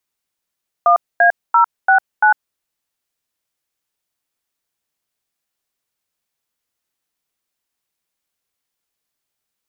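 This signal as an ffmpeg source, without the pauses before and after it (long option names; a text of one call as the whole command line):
ffmpeg -f lavfi -i "aevalsrc='0.299*clip(min(mod(t,0.341),0.102-mod(t,0.341))/0.002,0,1)*(eq(floor(t/0.341),0)*(sin(2*PI*697*mod(t,0.341))+sin(2*PI*1209*mod(t,0.341)))+eq(floor(t/0.341),1)*(sin(2*PI*697*mod(t,0.341))+sin(2*PI*1633*mod(t,0.341)))+eq(floor(t/0.341),2)*(sin(2*PI*941*mod(t,0.341))+sin(2*PI*1336*mod(t,0.341)))+eq(floor(t/0.341),3)*(sin(2*PI*770*mod(t,0.341))+sin(2*PI*1477*mod(t,0.341)))+eq(floor(t/0.341),4)*(sin(2*PI*852*mod(t,0.341))+sin(2*PI*1477*mod(t,0.341))))':duration=1.705:sample_rate=44100" out.wav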